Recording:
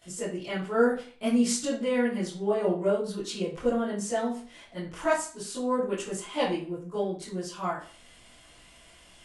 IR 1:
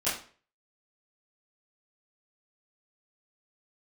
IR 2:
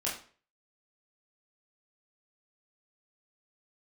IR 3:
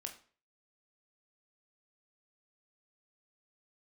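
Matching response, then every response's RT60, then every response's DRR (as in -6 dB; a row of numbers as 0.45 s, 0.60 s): 1; 0.45 s, 0.45 s, 0.45 s; -14.5 dB, -6.5 dB, 3.5 dB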